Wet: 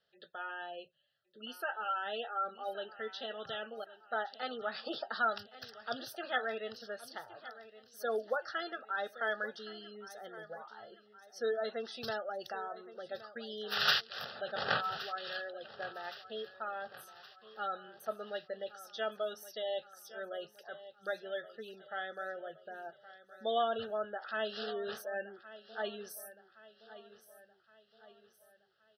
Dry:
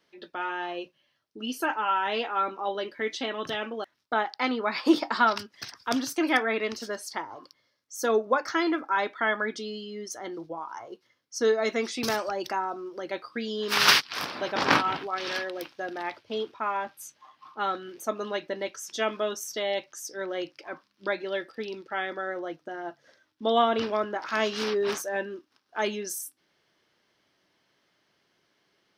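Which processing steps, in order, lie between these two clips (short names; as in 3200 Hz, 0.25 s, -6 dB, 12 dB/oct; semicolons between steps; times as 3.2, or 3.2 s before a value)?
fixed phaser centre 1500 Hz, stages 8; spectral gate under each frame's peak -25 dB strong; on a send: feedback echo 1.118 s, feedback 48%, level -16 dB; on the sum: gain -7 dB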